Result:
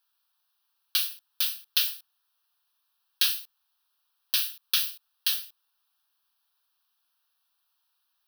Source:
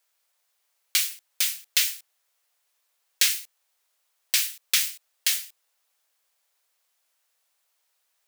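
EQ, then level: fixed phaser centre 2100 Hz, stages 6; 0.0 dB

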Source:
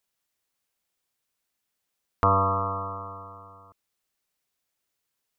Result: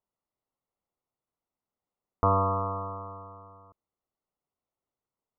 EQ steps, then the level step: polynomial smoothing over 65 samples; -1.0 dB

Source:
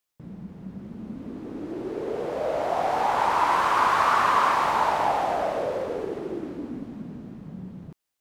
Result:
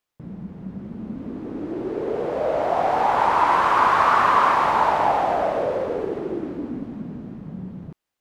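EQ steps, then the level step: high shelf 4000 Hz -10 dB; +4.5 dB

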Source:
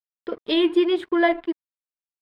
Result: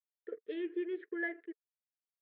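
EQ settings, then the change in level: double band-pass 890 Hz, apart 2 oct; air absorption 230 m; -6.5 dB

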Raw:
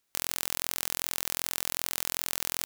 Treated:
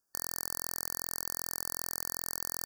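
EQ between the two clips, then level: brick-wall FIR band-stop 1800–4500 Hz; -4.0 dB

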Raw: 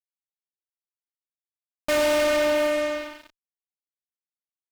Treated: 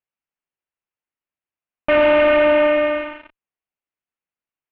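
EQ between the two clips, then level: elliptic low-pass 2800 Hz, stop band 80 dB; +8.0 dB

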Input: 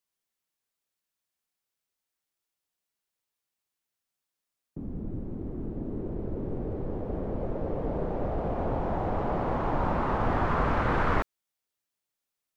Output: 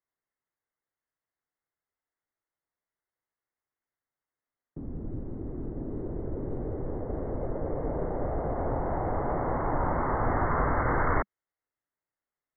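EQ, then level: brick-wall FIR low-pass 2200 Hz; bell 200 Hz -9 dB 0.24 oct; 0.0 dB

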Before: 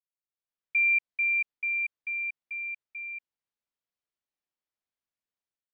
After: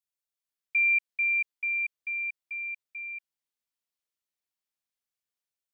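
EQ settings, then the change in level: high shelf 2200 Hz +8.5 dB; -4.5 dB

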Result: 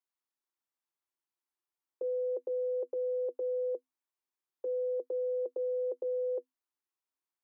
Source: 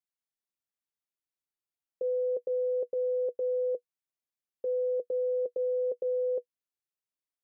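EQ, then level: rippled Chebyshev high-pass 250 Hz, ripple 9 dB; +5.5 dB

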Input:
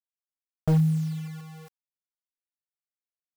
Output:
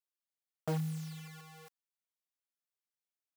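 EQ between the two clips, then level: HPF 180 Hz; low shelf 410 Hz -8.5 dB; -2.5 dB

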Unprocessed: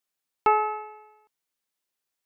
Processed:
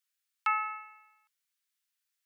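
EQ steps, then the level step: inverse Chebyshev high-pass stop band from 220 Hz, stop band 80 dB; 0.0 dB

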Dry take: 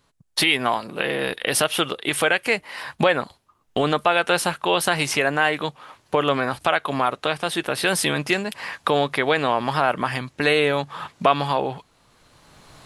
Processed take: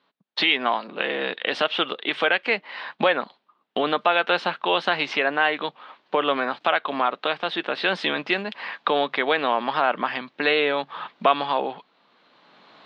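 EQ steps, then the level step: elliptic band-pass 200–3800 Hz, stop band 50 dB; low shelf 350 Hz -5 dB; 0.0 dB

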